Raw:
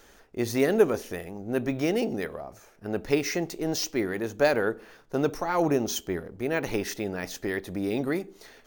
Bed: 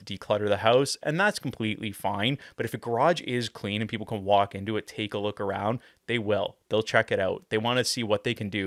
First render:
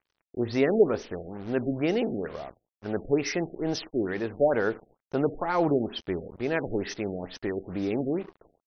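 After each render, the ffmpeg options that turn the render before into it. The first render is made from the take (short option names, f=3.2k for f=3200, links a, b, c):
-af "acrusher=bits=6:mix=0:aa=0.5,afftfilt=real='re*lt(b*sr/1024,730*pow(6400/730,0.5+0.5*sin(2*PI*2.2*pts/sr)))':imag='im*lt(b*sr/1024,730*pow(6400/730,0.5+0.5*sin(2*PI*2.2*pts/sr)))':win_size=1024:overlap=0.75"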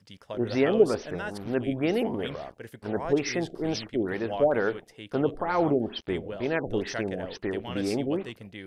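-filter_complex "[1:a]volume=-12.5dB[a];[0:a][a]amix=inputs=2:normalize=0"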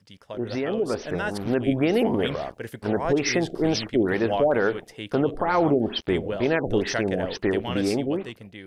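-af "alimiter=limit=-19.5dB:level=0:latency=1:release=142,dynaudnorm=f=220:g=9:m=7.5dB"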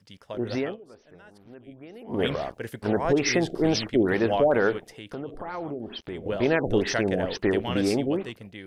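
-filter_complex "[0:a]asettb=1/sr,asplit=3[a][b][c];[a]atrim=end=4.784[d];[b]atrim=start=4.78:end=6.26,asetpts=PTS-STARTPTS,afade=t=in:d=0.004:c=qsin,afade=t=out:st=1.476:d=0.004:c=qsin,acompressor=threshold=-41dB:ratio=2:attack=3.2:release=140:knee=1:detection=peak[e];[c]atrim=start=6.256[f];[d][e]acrossfade=d=0.004:c1=hsin:c2=qsin[g];[g][f]acrossfade=d=0.004:c1=qsin:c2=hsin,asplit=3[h][i][j];[h]atrim=end=0.77,asetpts=PTS-STARTPTS,afade=t=out:st=0.62:d=0.15:silence=0.0707946[k];[i]atrim=start=0.77:end=2.07,asetpts=PTS-STARTPTS,volume=-23dB[l];[j]atrim=start=2.07,asetpts=PTS-STARTPTS,afade=t=in:d=0.15:silence=0.0707946[m];[k][l][m]concat=n=3:v=0:a=1"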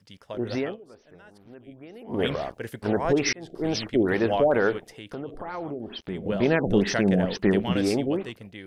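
-filter_complex "[0:a]asettb=1/sr,asplit=3[a][b][c];[a]atrim=end=6.084[d];[b]atrim=start=6.08:end=7.73,asetpts=PTS-STARTPTS,afade=t=in:d=0.004:c=qsin,afade=t=out:st=1.646:d=0.004:c=qsin,equalizer=f=190:t=o:w=0.45:g=10.5[e];[c]atrim=start=7.726[f];[d][e]acrossfade=d=0.004:c1=hsin:c2=qsin[g];[g][f]acrossfade=d=0.004:c1=qsin:c2=hsin,asplit=2[h][i];[h]atrim=end=3.33,asetpts=PTS-STARTPTS,afade=t=out:st=3.326:d=0.004:c=hsin[j];[i]atrim=start=3.33,asetpts=PTS-STARTPTS,afade=t=in:d=0.81:c=qsin[k];[j][k]concat=n=2:v=0:a=1"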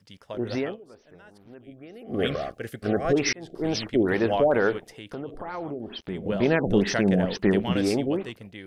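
-filter_complex "[0:a]asettb=1/sr,asplit=3[a][b][c];[a]atrim=end=1.624[d];[b]atrim=start=1.62:end=3.16,asetpts=PTS-STARTPTS,afade=t=in:d=0.004:c=qsin,afade=t=out:st=1.536:d=0.004:c=qsin,asuperstop=centerf=930:order=12:qfactor=3.9[e];[c]atrim=start=3.156[f];[d][e]acrossfade=d=0.004:c1=hsin:c2=qsin[g];[g][f]acrossfade=d=0.004:c1=qsin:c2=hsin"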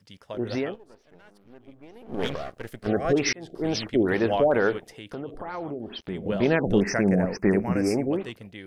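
-filter_complex "[0:a]asettb=1/sr,asplit=3[a][b][c];[a]atrim=end=0.744[d];[b]atrim=start=0.74:end=2.87,asetpts=PTS-STARTPTS,afade=t=in:d=0.004:c=qsin,afade=t=out:st=2.126:d=0.004:c=qsin,aeval=exprs='if(lt(val(0),0),0.251*val(0),val(0))':c=same[e];[c]atrim=start=2.866[f];[d][e]acrossfade=d=0.004:c1=hsin:c2=qsin[g];[g][f]acrossfade=d=0.004:c1=qsin:c2=hsin,asettb=1/sr,asplit=3[h][i][j];[h]atrim=end=6.804[k];[i]atrim=start=6.8:end=8.13,asetpts=PTS-STARTPTS,afade=t=in:d=0.004:c=qsin,afade=t=out:st=1.326:d=0.004:c=qsin,asuperstop=centerf=3500:order=8:qfactor=1.4[l];[j]atrim=start=8.126[m];[k][l]acrossfade=d=0.004:c1=hsin:c2=qsin[n];[n][m]acrossfade=d=0.004:c1=qsin:c2=hsin"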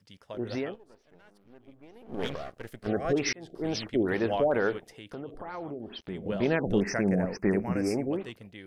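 -af "volume=-4.5dB"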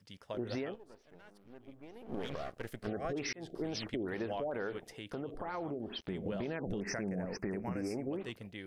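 -af "alimiter=limit=-22.5dB:level=0:latency=1:release=95,acompressor=threshold=-34dB:ratio=6"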